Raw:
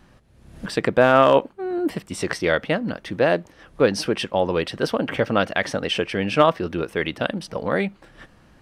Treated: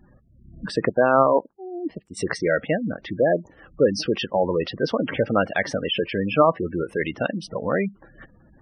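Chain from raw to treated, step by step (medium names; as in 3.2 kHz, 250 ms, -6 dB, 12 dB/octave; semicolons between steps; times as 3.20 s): 0.89–2.17 s: power-law waveshaper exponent 1.4; spectral gate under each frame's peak -15 dB strong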